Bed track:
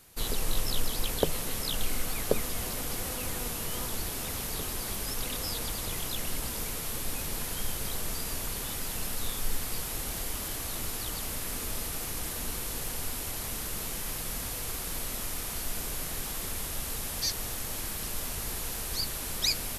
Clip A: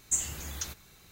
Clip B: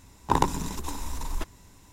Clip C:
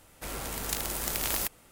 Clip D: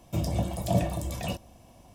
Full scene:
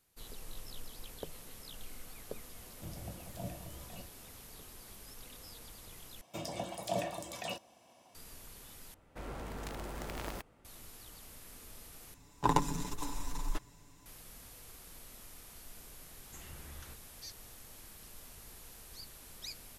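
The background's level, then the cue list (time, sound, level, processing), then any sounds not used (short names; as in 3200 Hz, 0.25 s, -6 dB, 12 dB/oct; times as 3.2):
bed track -17.5 dB
2.69 add D -18 dB
6.21 replace with D -3.5 dB + weighting filter A
8.94 replace with C -3.5 dB + LPF 1100 Hz 6 dB/oct
12.14 replace with B -7 dB + comb 6.9 ms
16.21 add A -9 dB + LPF 2500 Hz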